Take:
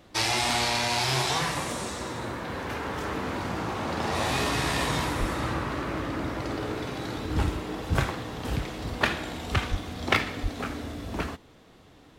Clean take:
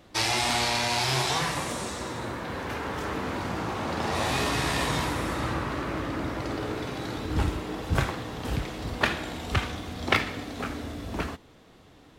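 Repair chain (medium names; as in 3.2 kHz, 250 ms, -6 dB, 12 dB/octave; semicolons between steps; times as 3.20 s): clip repair -8 dBFS; 5.19–5.31 s: high-pass 140 Hz 24 dB/octave; 9.70–9.82 s: high-pass 140 Hz 24 dB/octave; 10.42–10.54 s: high-pass 140 Hz 24 dB/octave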